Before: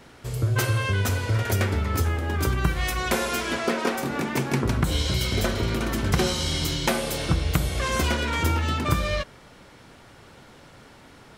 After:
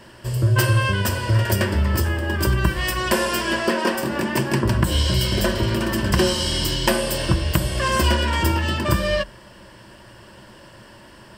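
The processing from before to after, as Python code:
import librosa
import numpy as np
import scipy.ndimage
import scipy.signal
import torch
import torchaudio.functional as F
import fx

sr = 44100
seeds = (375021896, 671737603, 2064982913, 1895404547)

y = fx.ripple_eq(x, sr, per_octave=1.3, db=10)
y = F.gain(torch.from_numpy(y), 3.0).numpy()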